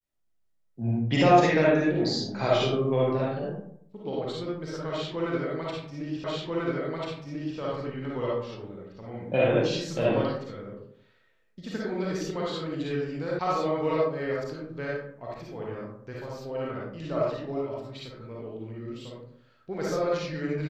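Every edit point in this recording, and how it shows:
0:06.24: the same again, the last 1.34 s
0:13.39: cut off before it has died away

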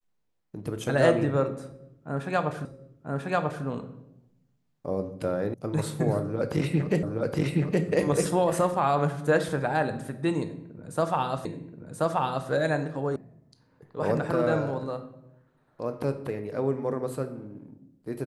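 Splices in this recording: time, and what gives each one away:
0:02.65: the same again, the last 0.99 s
0:05.54: cut off before it has died away
0:07.03: the same again, the last 0.82 s
0:11.45: the same again, the last 1.03 s
0:13.16: cut off before it has died away

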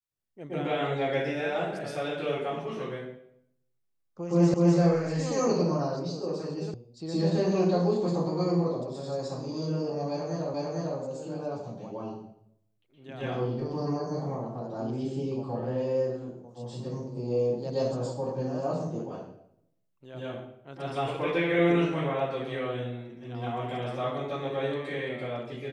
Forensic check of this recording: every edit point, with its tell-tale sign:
0:04.54: the same again, the last 0.25 s
0:06.74: cut off before it has died away
0:10.54: the same again, the last 0.45 s

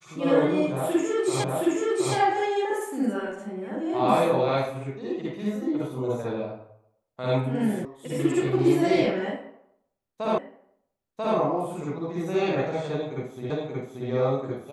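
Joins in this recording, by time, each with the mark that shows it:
0:01.44: the same again, the last 0.72 s
0:07.85: cut off before it has died away
0:10.38: the same again, the last 0.99 s
0:13.50: the same again, the last 0.58 s

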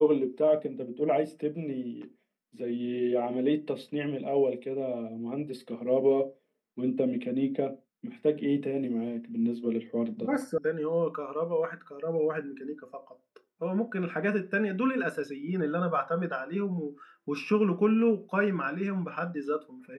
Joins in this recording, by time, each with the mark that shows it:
0:10.58: cut off before it has died away

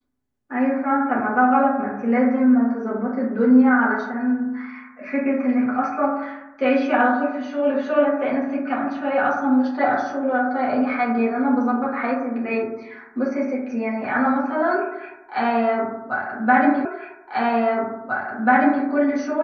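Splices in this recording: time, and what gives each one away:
0:16.85: the same again, the last 1.99 s

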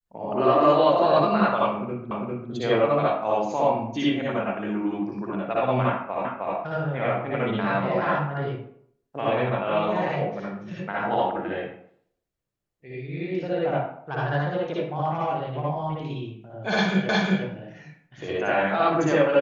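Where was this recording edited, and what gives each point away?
0:02.11: the same again, the last 0.4 s
0:06.25: the same again, the last 0.31 s
0:17.09: the same again, the last 0.36 s

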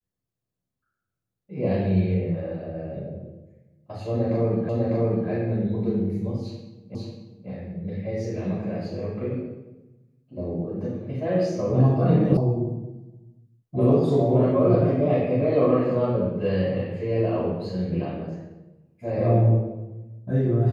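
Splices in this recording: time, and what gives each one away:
0:04.69: the same again, the last 0.6 s
0:06.95: the same again, the last 0.54 s
0:12.37: cut off before it has died away

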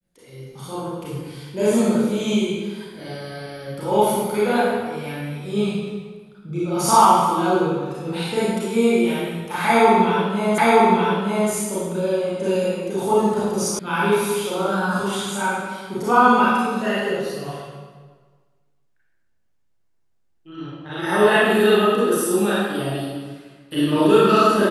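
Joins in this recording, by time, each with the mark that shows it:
0:10.58: the same again, the last 0.92 s
0:13.79: cut off before it has died away

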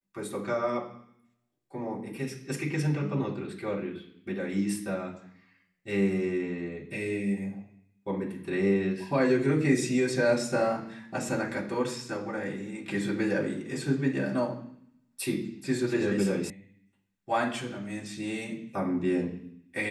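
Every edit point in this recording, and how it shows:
0:16.50: cut off before it has died away

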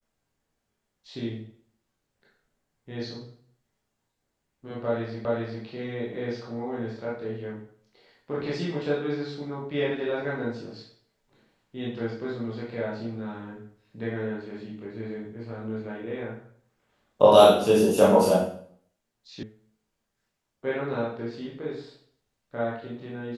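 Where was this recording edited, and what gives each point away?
0:05.25: the same again, the last 0.4 s
0:19.43: cut off before it has died away

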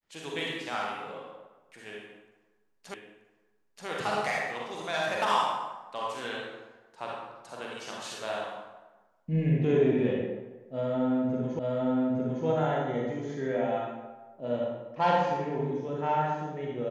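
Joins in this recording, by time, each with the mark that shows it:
0:02.94: the same again, the last 0.93 s
0:11.59: the same again, the last 0.86 s

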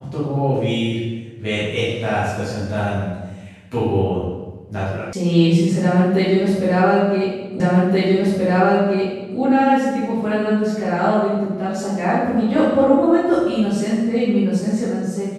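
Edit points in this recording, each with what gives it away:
0:05.13: cut off before it has died away
0:07.60: the same again, the last 1.78 s

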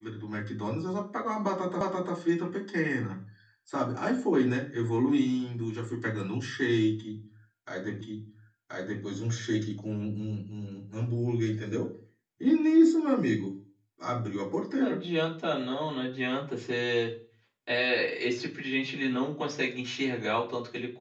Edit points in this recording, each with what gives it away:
0:01.81: the same again, the last 0.34 s
0:08.01: the same again, the last 1.03 s

